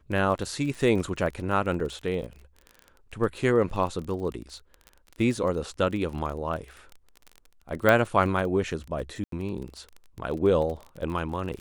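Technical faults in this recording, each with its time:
crackle 26/s -33 dBFS
1.8 gap 2.3 ms
5.37 gap 2.2 ms
7.89 pop -9 dBFS
9.24–9.32 gap 83 ms

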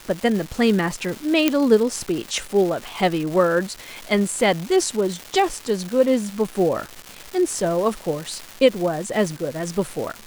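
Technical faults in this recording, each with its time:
crackle 560/s -27 dBFS
1.48 pop -3 dBFS

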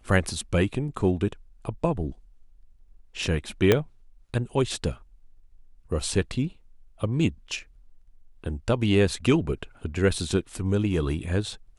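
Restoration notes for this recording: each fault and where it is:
3.72 pop -5 dBFS

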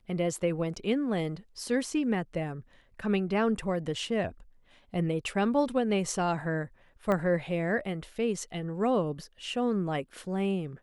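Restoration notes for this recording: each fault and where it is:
7.12 pop -18 dBFS

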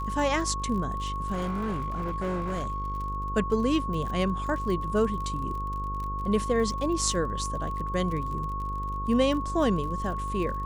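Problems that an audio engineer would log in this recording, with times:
buzz 50 Hz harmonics 11 -34 dBFS
crackle 41/s -35 dBFS
tone 1100 Hz -32 dBFS
1.32–3.06 clipped -26 dBFS

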